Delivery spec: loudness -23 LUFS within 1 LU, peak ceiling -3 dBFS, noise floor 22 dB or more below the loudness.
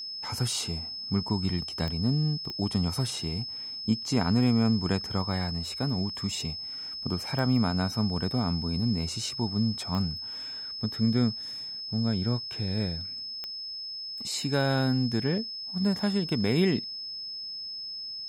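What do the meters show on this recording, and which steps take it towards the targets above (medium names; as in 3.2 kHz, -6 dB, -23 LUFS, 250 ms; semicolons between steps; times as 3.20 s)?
clicks found 5; steady tone 5.2 kHz; tone level -35 dBFS; loudness -29.0 LUFS; peak level -13.0 dBFS; loudness target -23.0 LUFS
-> de-click; band-stop 5.2 kHz, Q 30; trim +6 dB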